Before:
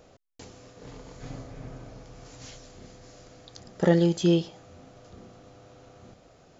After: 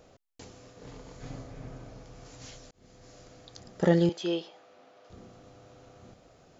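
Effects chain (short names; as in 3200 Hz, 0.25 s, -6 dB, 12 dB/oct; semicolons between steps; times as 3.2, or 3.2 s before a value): 2.71–3.26 fade in equal-power; 4.09–5.1 BPF 450–4300 Hz; gain -2 dB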